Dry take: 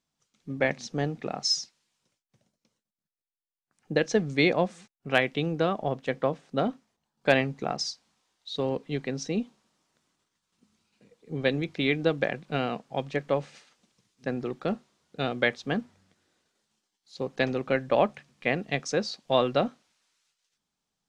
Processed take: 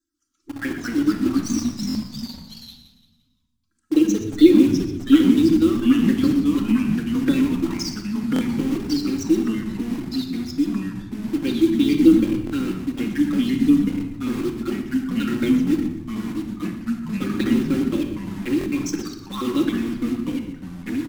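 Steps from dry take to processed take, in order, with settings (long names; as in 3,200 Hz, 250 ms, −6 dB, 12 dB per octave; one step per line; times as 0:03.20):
time-frequency cells dropped at random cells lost 29%
drawn EQ curve 110 Hz 0 dB, 180 Hz −21 dB, 330 Hz +14 dB, 480 Hz −16 dB, 710 Hz −28 dB, 1,400 Hz +4 dB, 2,100 Hz −7 dB, 4,100 Hz −4 dB, 7,900 Hz +5 dB
flanger swept by the level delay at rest 3.1 ms, full sweep at −27.5 dBFS
in parallel at −3 dB: bit reduction 6 bits
on the sum: echo with shifted repeats 121 ms, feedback 40%, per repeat −100 Hz, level −12 dB
rectangular room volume 2,500 cubic metres, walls furnished, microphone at 2.2 metres
delay with pitch and tempo change per echo 149 ms, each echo −2 semitones, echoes 3
buffer that repeats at 0:01.88/0:08.34/0:12.45/0:18.59, samples 1,024, times 2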